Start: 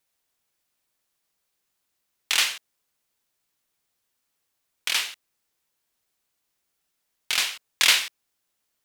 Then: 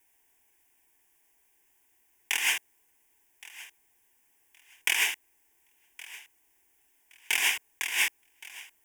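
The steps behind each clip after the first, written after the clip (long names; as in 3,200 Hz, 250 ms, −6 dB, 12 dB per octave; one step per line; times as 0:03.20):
phaser with its sweep stopped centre 850 Hz, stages 8
compressor whose output falls as the input rises −33 dBFS, ratio −1
feedback echo with a high-pass in the loop 1,119 ms, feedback 23%, level −19 dB
level +5.5 dB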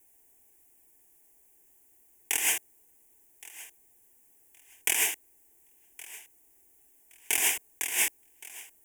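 flat-topped bell 2,200 Hz −11 dB 2.9 octaves
level +6.5 dB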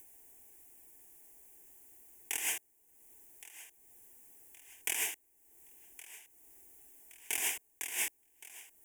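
upward compression, threshold −38 dBFS
level −8 dB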